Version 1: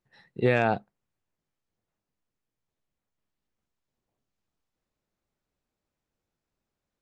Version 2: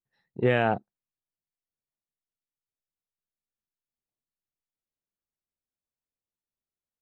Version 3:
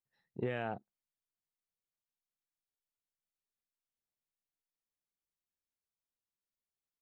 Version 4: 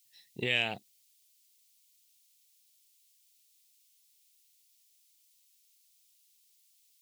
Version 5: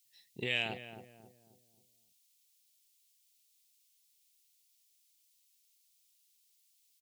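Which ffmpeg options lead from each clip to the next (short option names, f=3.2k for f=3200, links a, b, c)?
-af "afwtdn=0.0141"
-af "acompressor=threshold=-27dB:ratio=6,volume=-5.5dB"
-af "aexciter=amount=11.2:drive=8.1:freq=2.2k"
-filter_complex "[0:a]asplit=2[a][b];[b]adelay=270,lowpass=f=830:p=1,volume=-8dB,asplit=2[c][d];[d]adelay=270,lowpass=f=830:p=1,volume=0.45,asplit=2[e][f];[f]adelay=270,lowpass=f=830:p=1,volume=0.45,asplit=2[g][h];[h]adelay=270,lowpass=f=830:p=1,volume=0.45,asplit=2[i][j];[j]adelay=270,lowpass=f=830:p=1,volume=0.45[k];[a][c][e][g][i][k]amix=inputs=6:normalize=0,volume=-4dB"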